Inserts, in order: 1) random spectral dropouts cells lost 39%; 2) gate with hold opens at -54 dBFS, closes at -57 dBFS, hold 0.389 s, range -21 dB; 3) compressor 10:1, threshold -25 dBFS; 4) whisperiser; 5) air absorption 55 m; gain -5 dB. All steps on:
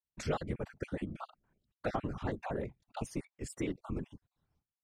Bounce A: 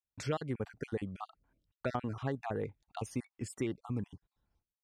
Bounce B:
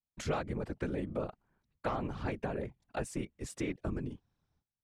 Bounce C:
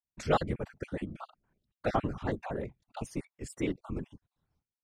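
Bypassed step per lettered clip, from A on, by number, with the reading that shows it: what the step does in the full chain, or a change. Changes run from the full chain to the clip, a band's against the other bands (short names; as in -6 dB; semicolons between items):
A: 4, 125 Hz band +1.5 dB; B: 1, crest factor change -2.5 dB; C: 3, mean gain reduction 2.0 dB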